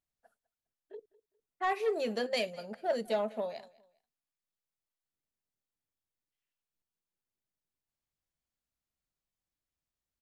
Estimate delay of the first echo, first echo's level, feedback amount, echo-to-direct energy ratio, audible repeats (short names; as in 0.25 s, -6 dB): 0.203 s, -22.0 dB, 30%, -21.5 dB, 2